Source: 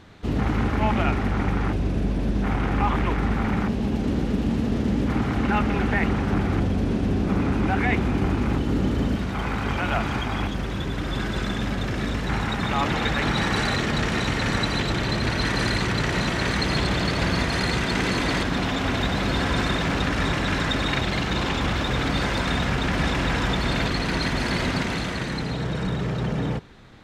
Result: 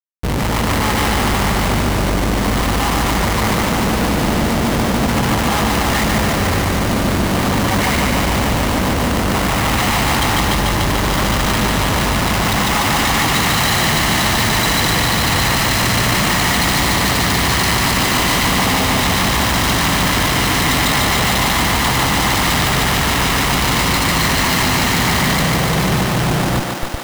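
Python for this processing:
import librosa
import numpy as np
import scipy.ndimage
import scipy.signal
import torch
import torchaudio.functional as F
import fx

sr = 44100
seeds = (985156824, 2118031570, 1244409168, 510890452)

y = fx.lower_of_two(x, sr, delay_ms=1.0)
y = scipy.signal.sosfilt(scipy.signal.butter(2, 42.0, 'highpass', fs=sr, output='sos'), y)
y = fx.schmitt(y, sr, flips_db=-38.5)
y = fx.echo_thinned(y, sr, ms=146, feedback_pct=77, hz=220.0, wet_db=-3)
y = y * 10.0 ** (7.5 / 20.0)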